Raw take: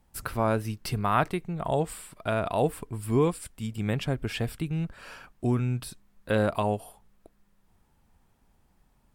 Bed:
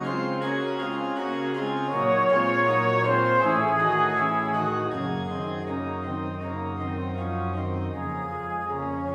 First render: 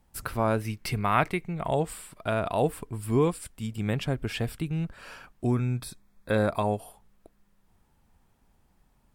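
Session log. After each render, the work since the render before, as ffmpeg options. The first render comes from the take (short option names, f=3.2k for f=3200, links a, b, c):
-filter_complex "[0:a]asettb=1/sr,asplit=3[a][b][c];[a]atrim=end=0.614[d];[b]atrim=start=0.61:end=1.75,asetpts=PTS-STARTPTS,afade=t=in:d=0.004:c=qsin,afade=t=out:st=1.136:d=0.004:c=qsin,equalizer=f=2.2k:t=o:w=0.38:g=9[e];[c]atrim=start=1.746[f];[d][e]acrossfade=d=0.004:c1=hsin:c2=qsin[g];[g][f]acrossfade=d=0.004:c1=qsin:c2=hsin,asettb=1/sr,asplit=3[h][i][j];[h]atrim=end=5.474[k];[i]atrim=start=5.47:end=6.79,asetpts=PTS-STARTPTS,afade=t=in:d=0.004:c=qsin,afade=t=out:st=1.316:d=0.004:c=qsin,asuperstop=centerf=2900:order=8:qfactor=6[l];[j]atrim=start=6.786[m];[k][l]acrossfade=d=0.004:c1=hsin:c2=qsin[n];[n][m]acrossfade=d=0.004:c1=qsin:c2=hsin"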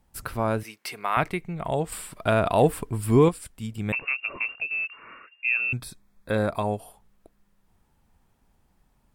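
-filter_complex "[0:a]asettb=1/sr,asplit=3[a][b][c];[a]atrim=end=0.634[d];[b]atrim=start=0.63:end=1.17,asetpts=PTS-STARTPTS,afade=t=in:d=0.004:c=qsin,afade=t=out:st=0.536:d=0.004:c=qsin,highpass=490[e];[c]atrim=start=1.166[f];[d][e]acrossfade=d=0.004:c1=hsin:c2=qsin[g];[g][f]acrossfade=d=0.004:c1=qsin:c2=hsin,asettb=1/sr,asplit=3[h][i][j];[h]atrim=end=1.924[k];[i]atrim=start=1.92:end=3.29,asetpts=PTS-STARTPTS,afade=t=in:d=0.004:c=qsin,afade=t=out:st=1.366:d=0.004:c=qsin,acontrast=54[l];[j]atrim=start=3.286[m];[k][l]acrossfade=d=0.004:c1=hsin:c2=qsin[n];[n][m]acrossfade=d=0.004:c1=qsin:c2=hsin,asettb=1/sr,asplit=3[o][p][q];[o]atrim=end=3.924[r];[p]atrim=start=3.92:end=5.73,asetpts=PTS-STARTPTS,afade=t=in:d=0.004:c=qsin,afade=t=out:st=1.806:d=0.004:c=qsin,lowpass=f=2.4k:t=q:w=0.5098,lowpass=f=2.4k:t=q:w=0.6013,lowpass=f=2.4k:t=q:w=0.9,lowpass=f=2.4k:t=q:w=2.563,afreqshift=-2800[s];[q]atrim=start=5.726[t];[r][s]acrossfade=d=0.004:c1=hsin:c2=qsin[u];[u][t]acrossfade=d=0.004:c1=qsin:c2=hsin"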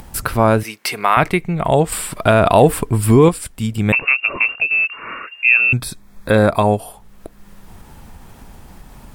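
-filter_complex "[0:a]asplit=2[a][b];[b]acompressor=mode=upward:threshold=-28dB:ratio=2.5,volume=-1.5dB[c];[a][c]amix=inputs=2:normalize=0,alimiter=level_in=7dB:limit=-1dB:release=50:level=0:latency=1"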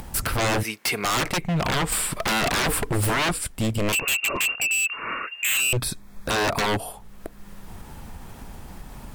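-af "aeval=exprs='0.133*(abs(mod(val(0)/0.133+3,4)-2)-1)':c=same"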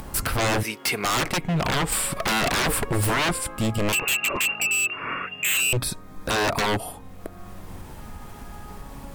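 -filter_complex "[1:a]volume=-17dB[a];[0:a][a]amix=inputs=2:normalize=0"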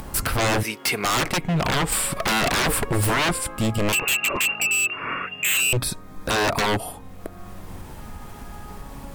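-af "volume=1.5dB"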